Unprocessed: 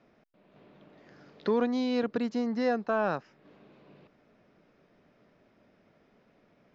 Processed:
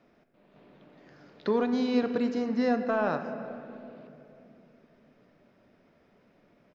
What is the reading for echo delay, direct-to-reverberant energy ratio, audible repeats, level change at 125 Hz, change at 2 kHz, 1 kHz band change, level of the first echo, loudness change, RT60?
333 ms, 7.0 dB, 1, +1.0 dB, +1.0 dB, +1.0 dB, -22.0 dB, +1.0 dB, 2.9 s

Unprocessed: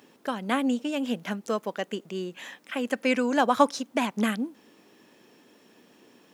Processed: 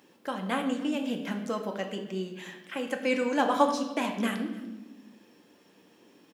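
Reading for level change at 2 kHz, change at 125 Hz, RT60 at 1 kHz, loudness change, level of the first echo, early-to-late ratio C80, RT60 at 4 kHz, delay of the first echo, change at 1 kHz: -3.0 dB, no reading, 0.90 s, -2.5 dB, -21.0 dB, 9.5 dB, 0.95 s, 294 ms, -2.5 dB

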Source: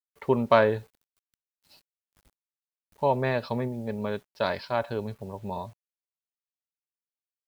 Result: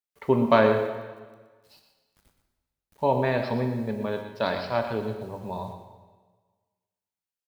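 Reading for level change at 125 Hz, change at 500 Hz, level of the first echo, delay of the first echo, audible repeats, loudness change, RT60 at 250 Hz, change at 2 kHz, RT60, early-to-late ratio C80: +2.0 dB, +2.0 dB, -10.5 dB, 121 ms, 1, +2.0 dB, 1.4 s, +1.5 dB, 1.4 s, 6.5 dB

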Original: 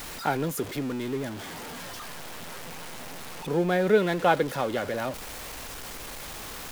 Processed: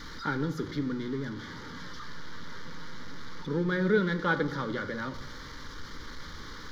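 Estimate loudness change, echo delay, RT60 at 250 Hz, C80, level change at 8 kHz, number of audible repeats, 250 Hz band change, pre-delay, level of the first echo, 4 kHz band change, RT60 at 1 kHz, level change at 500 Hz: -2.5 dB, no echo, 1.3 s, 16.0 dB, -14.0 dB, no echo, -1.0 dB, 3 ms, no echo, -4.5 dB, 0.95 s, -6.5 dB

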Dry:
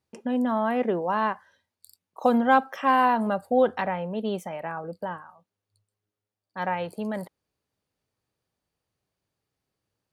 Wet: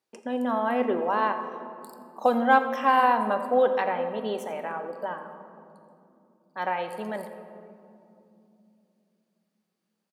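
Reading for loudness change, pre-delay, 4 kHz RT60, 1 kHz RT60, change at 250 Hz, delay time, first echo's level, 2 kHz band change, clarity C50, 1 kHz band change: 0.0 dB, 3 ms, 1.3 s, 2.5 s, -4.0 dB, 85 ms, -16.0 dB, +1.0 dB, 8.5 dB, +1.0 dB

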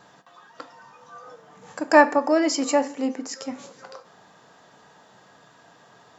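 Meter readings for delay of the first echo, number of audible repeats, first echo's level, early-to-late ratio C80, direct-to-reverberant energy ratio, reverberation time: no echo, no echo, no echo, 20.0 dB, 8.5 dB, 0.50 s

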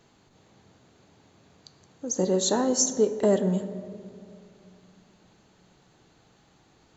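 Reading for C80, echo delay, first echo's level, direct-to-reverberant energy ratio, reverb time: 12.5 dB, no echo, no echo, 9.5 dB, 2.3 s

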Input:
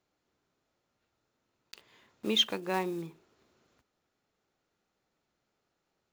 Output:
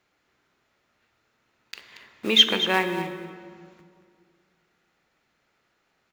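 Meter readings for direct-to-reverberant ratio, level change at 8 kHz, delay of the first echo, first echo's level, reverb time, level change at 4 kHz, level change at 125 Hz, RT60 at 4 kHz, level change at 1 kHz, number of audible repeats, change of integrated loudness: 6.5 dB, +6.5 dB, 231 ms, -12.0 dB, 2.1 s, +11.0 dB, +6.0 dB, 1.3 s, +8.5 dB, 1, +10.0 dB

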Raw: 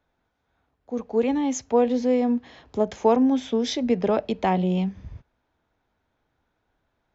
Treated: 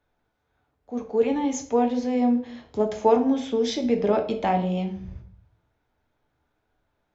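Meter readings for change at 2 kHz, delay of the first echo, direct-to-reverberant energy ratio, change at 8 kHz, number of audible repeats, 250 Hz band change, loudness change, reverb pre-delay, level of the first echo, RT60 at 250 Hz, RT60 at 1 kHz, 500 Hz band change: -1.0 dB, no echo, 3.0 dB, no reading, no echo, -1.0 dB, -0.5 dB, 7 ms, no echo, 0.75 s, 0.55 s, 0.0 dB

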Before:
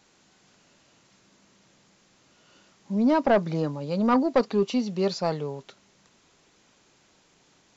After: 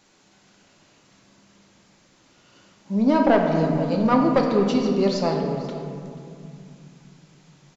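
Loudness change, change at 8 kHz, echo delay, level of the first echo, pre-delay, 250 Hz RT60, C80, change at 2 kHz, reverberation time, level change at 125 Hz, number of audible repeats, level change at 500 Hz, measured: +4.0 dB, no reading, 485 ms, -18.5 dB, 3 ms, 4.0 s, 4.5 dB, +3.5 dB, 2.4 s, +5.5 dB, 1, +4.0 dB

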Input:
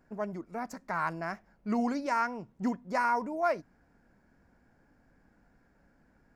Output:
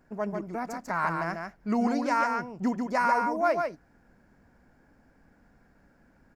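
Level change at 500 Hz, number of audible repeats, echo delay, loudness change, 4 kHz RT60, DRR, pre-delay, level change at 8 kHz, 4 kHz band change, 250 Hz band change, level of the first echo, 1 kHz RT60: +4.5 dB, 1, 144 ms, +4.0 dB, no reverb, no reverb, no reverb, +4.5 dB, +4.5 dB, +4.0 dB, -4.5 dB, no reverb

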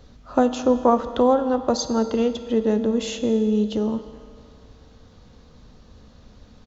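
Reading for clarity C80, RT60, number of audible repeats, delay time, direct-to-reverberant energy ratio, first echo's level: 11.5 dB, 2.2 s, 1, 215 ms, 9.0 dB, -22.5 dB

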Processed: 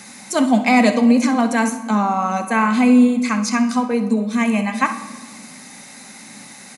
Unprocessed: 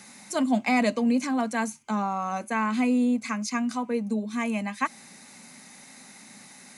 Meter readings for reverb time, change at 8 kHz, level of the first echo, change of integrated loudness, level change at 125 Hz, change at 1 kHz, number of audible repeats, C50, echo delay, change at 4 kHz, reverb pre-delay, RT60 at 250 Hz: 1.4 s, +9.0 dB, -13.0 dB, +10.0 dB, no reading, +9.5 dB, 1, 9.5 dB, 64 ms, +9.0 dB, 4 ms, 2.0 s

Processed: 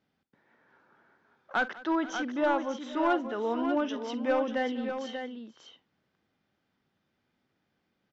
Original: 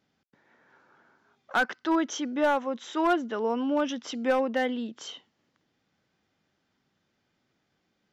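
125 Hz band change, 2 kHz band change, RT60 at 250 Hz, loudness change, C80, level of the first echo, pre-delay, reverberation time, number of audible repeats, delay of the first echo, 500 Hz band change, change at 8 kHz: no reading, -2.5 dB, no reverb, -2.5 dB, no reverb, -16.0 dB, no reverb, no reverb, 4, 48 ms, -2.0 dB, no reading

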